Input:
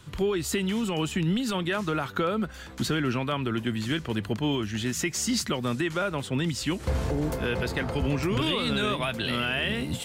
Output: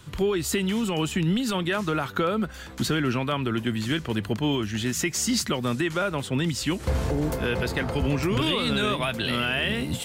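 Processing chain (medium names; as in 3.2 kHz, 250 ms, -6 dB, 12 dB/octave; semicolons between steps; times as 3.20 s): treble shelf 12 kHz +4 dB; trim +2 dB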